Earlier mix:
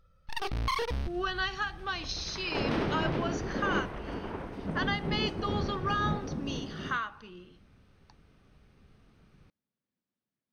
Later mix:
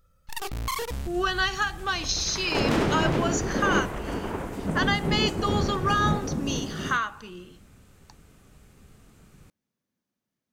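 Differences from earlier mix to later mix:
speech +6.5 dB; second sound +6.5 dB; master: remove polynomial smoothing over 15 samples

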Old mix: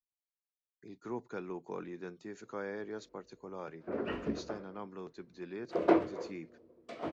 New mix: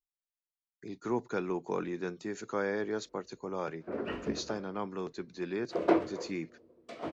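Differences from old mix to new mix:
speech +7.5 dB; master: add high shelf 4800 Hz +5 dB

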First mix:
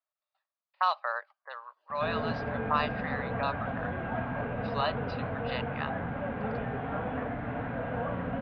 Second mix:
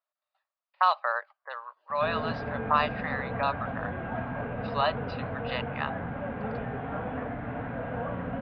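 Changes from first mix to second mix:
speech +4.5 dB; master: add air absorption 97 m

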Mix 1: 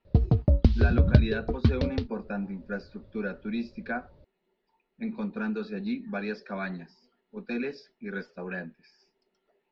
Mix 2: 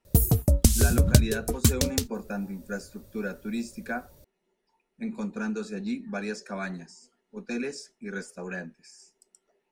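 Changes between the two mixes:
background: add high shelf 2100 Hz +11.5 dB; master: remove steep low-pass 4600 Hz 48 dB/oct

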